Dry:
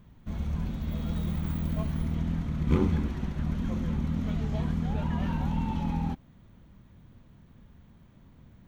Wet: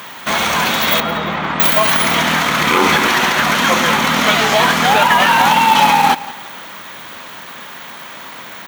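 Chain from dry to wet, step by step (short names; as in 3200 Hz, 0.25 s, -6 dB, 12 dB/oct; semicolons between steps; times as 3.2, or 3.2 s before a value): HPF 1000 Hz 12 dB/oct; in parallel at -2.5 dB: compressor 6:1, threshold -54 dBFS, peak gain reduction 16.5 dB; on the sum: short-mantissa float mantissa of 2-bit; 1–1.6 tape spacing loss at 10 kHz 35 dB; on a send: feedback echo 0.173 s, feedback 34%, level -18.5 dB; on the sum: maximiser +35 dB; gain -1 dB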